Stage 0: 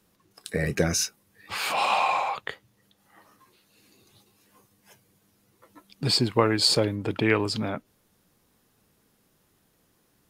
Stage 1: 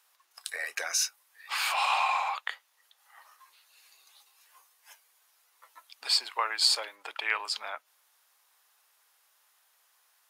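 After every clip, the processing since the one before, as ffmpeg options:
-filter_complex "[0:a]asplit=2[s0][s1];[s1]acompressor=threshold=0.0251:ratio=6,volume=1.06[s2];[s0][s2]amix=inputs=2:normalize=0,highpass=f=810:w=0.5412,highpass=f=810:w=1.3066,volume=0.631"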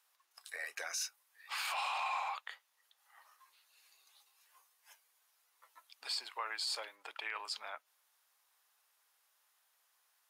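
-af "alimiter=limit=0.0891:level=0:latency=1:release=13,volume=0.422"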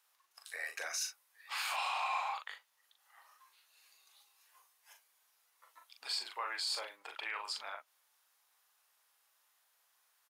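-filter_complex "[0:a]asplit=2[s0][s1];[s1]adelay=40,volume=0.531[s2];[s0][s2]amix=inputs=2:normalize=0"

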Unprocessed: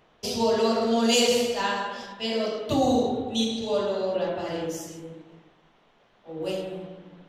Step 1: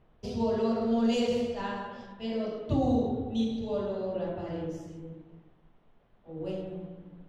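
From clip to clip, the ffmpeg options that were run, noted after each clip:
-af "aemphasis=mode=reproduction:type=riaa,volume=0.355"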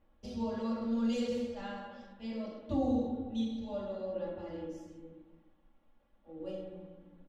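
-af "aecho=1:1:3.6:0.82,volume=0.376"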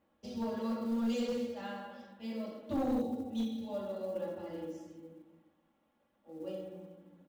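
-af "highpass=130,aeval=exprs='clip(val(0),-1,0.0316)':c=same,acrusher=bits=8:mode=log:mix=0:aa=0.000001"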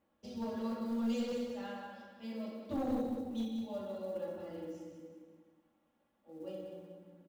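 -af "aecho=1:1:183|366|549|732:0.398|0.147|0.0545|0.0202,volume=0.708"

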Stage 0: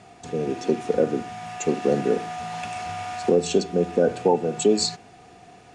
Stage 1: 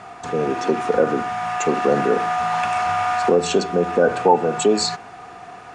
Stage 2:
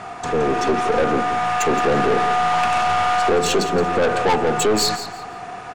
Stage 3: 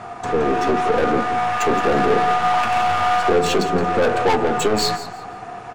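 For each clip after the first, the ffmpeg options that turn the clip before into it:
-filter_complex "[0:a]asplit=2[s0][s1];[s1]alimiter=limit=0.106:level=0:latency=1,volume=0.944[s2];[s0][s2]amix=inputs=2:normalize=0,equalizer=f=1200:w=0.93:g=15,volume=0.708"
-af "aeval=exprs='(tanh(10*val(0)+0.3)-tanh(0.3))/10':c=same,aecho=1:1:170|340|510:0.251|0.0603|0.0145,volume=2"
-filter_complex "[0:a]flanger=delay=8.5:depth=2.8:regen=-43:speed=0.71:shape=sinusoidal,asplit=2[s0][s1];[s1]adynamicsmooth=sensitivity=4.5:basefreq=970,volume=0.708[s2];[s0][s2]amix=inputs=2:normalize=0"

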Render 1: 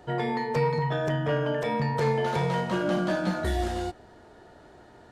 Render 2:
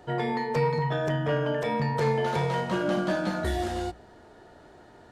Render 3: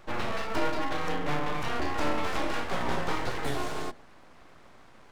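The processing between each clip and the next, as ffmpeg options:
-af "bandreject=f=60:t=h:w=6,bandreject=f=120:t=h:w=6,bandreject=f=180:t=h:w=6"
-af "aeval=exprs='abs(val(0))':c=same"

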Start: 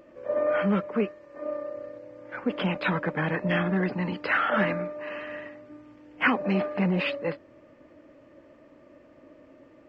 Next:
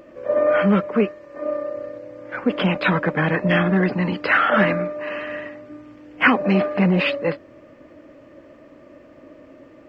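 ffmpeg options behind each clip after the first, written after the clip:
-af "bandreject=f=890:w=21,volume=2.37"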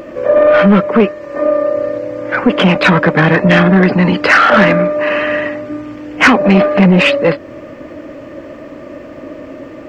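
-filter_complex "[0:a]asplit=2[s0][s1];[s1]acompressor=threshold=0.0447:ratio=6,volume=1.19[s2];[s0][s2]amix=inputs=2:normalize=0,asoftclip=type=tanh:threshold=0.299,volume=2.82"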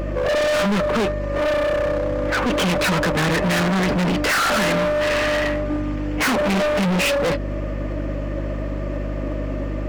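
-af "aeval=exprs='val(0)+0.0562*(sin(2*PI*50*n/s)+sin(2*PI*2*50*n/s)/2+sin(2*PI*3*50*n/s)/3+sin(2*PI*4*50*n/s)/4+sin(2*PI*5*50*n/s)/5)':c=same,volume=7.94,asoftclip=hard,volume=0.126"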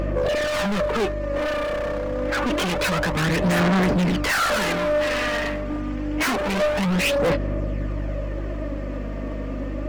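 -af "aphaser=in_gain=1:out_gain=1:delay=4.4:decay=0.39:speed=0.27:type=sinusoidal,volume=0.668"

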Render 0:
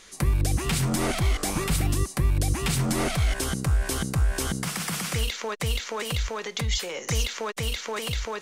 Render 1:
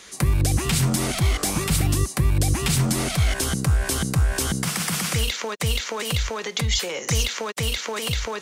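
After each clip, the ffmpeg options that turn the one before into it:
-filter_complex "[0:a]highpass=57,acrossover=split=190|3000[s0][s1][s2];[s1]acompressor=threshold=0.0251:ratio=6[s3];[s0][s3][s2]amix=inputs=3:normalize=0,volume=1.88"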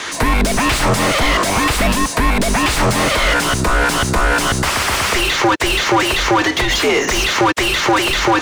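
-filter_complex "[0:a]afreqshift=-100,asplit=2[s0][s1];[s1]highpass=f=720:p=1,volume=28.2,asoftclip=type=tanh:threshold=0.398[s2];[s0][s2]amix=inputs=2:normalize=0,lowpass=f=1500:p=1,volume=0.501,volume=1.78"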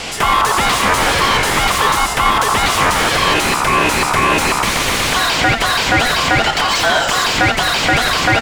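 -filter_complex "[0:a]aeval=exprs='val(0)*sin(2*PI*1100*n/s)':c=same,asplit=2[s0][s1];[s1]asplit=8[s2][s3][s4][s5][s6][s7][s8][s9];[s2]adelay=86,afreqshift=-81,volume=0.355[s10];[s3]adelay=172,afreqshift=-162,volume=0.216[s11];[s4]adelay=258,afreqshift=-243,volume=0.132[s12];[s5]adelay=344,afreqshift=-324,volume=0.0804[s13];[s6]adelay=430,afreqshift=-405,volume=0.049[s14];[s7]adelay=516,afreqshift=-486,volume=0.0299[s15];[s8]adelay=602,afreqshift=-567,volume=0.0182[s16];[s9]adelay=688,afreqshift=-648,volume=0.0111[s17];[s10][s11][s12][s13][s14][s15][s16][s17]amix=inputs=8:normalize=0[s18];[s0][s18]amix=inputs=2:normalize=0,volume=1.41"

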